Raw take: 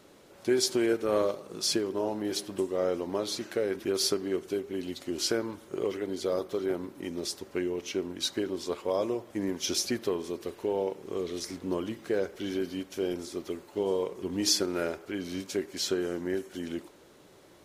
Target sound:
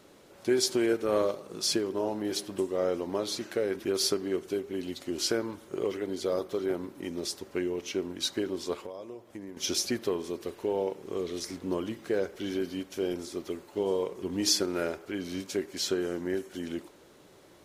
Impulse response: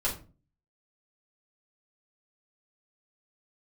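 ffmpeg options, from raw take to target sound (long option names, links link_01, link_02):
-filter_complex "[0:a]asettb=1/sr,asplit=3[link_01][link_02][link_03];[link_01]atrim=end=8.854[link_04];[link_02]atrim=start=8.85:end=9.57,asetpts=PTS-STARTPTS,afade=type=in:duration=0.004:curve=qsin,afade=type=out:start_time=0.716:duration=0.004:curve=qsin,acompressor=threshold=-41dB:ratio=4[link_05];[link_03]atrim=start=9.566[link_06];[link_04][link_05]acrossfade=duration=0.004:curve1=hsin:curve2=qsin[link_07];[link_07][link_06]acrossfade=duration=0.004:curve1=qsin:curve2=hsin"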